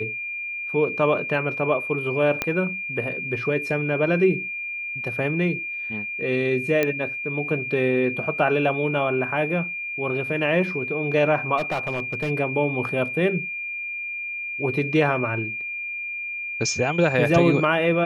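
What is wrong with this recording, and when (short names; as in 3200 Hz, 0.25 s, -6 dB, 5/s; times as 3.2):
tone 2400 Hz -28 dBFS
2.42 pop -8 dBFS
6.83 pop -8 dBFS
11.57–12.31 clipped -20.5 dBFS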